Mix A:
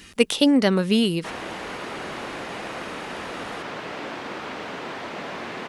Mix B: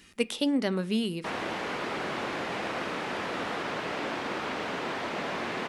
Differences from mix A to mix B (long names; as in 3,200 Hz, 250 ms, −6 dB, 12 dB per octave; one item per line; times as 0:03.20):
speech −11.0 dB
reverb: on, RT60 0.55 s